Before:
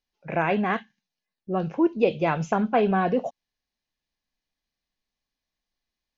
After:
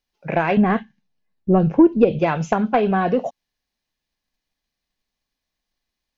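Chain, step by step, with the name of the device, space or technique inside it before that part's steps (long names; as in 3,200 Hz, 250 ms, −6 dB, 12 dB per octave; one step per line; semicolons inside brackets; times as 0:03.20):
drum-bus smash (transient designer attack +5 dB, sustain +1 dB; downward compressor, threshold −15 dBFS, peak gain reduction 6 dB; soft clipping −10 dBFS, distortion −21 dB)
0:00.57–0:02.19: spectral tilt −3 dB per octave
level +4 dB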